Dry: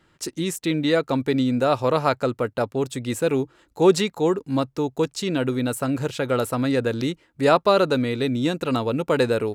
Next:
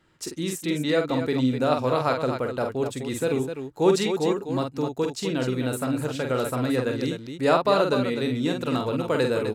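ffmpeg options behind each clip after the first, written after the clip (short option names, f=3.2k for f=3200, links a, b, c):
-af "aecho=1:1:46.65|253.6:0.562|0.398,volume=-4dB"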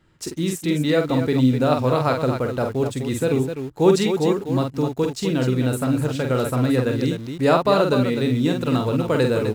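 -filter_complex "[0:a]lowshelf=f=190:g=9.5,asplit=2[a][b];[b]acrusher=bits=5:mix=0:aa=0.000001,volume=-12dB[c];[a][c]amix=inputs=2:normalize=0"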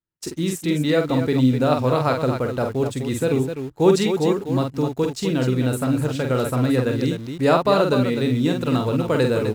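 -af "agate=range=-33dB:threshold=-32dB:ratio=3:detection=peak"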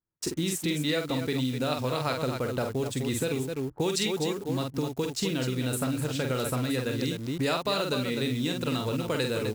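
-filter_complex "[0:a]acrossover=split=2100[a][b];[a]acompressor=threshold=-26dB:ratio=10[c];[b]acrusher=bits=7:mix=0:aa=0.000001[d];[c][d]amix=inputs=2:normalize=0"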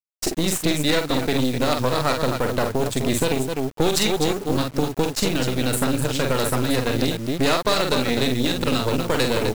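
-af "aeval=exprs='0.2*(cos(1*acos(clip(val(0)/0.2,-1,1)))-cos(1*PI/2))+0.0355*(cos(6*acos(clip(val(0)/0.2,-1,1)))-cos(6*PI/2))':c=same,acrusher=bits=7:mix=0:aa=0.000001,volume=6.5dB"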